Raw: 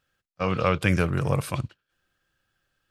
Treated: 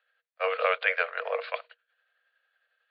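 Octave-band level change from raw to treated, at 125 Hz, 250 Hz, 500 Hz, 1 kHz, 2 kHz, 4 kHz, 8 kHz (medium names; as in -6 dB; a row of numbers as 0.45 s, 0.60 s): under -40 dB, under -40 dB, -1.5 dB, -1.5 dB, +3.0 dB, -1.5 dB, under -35 dB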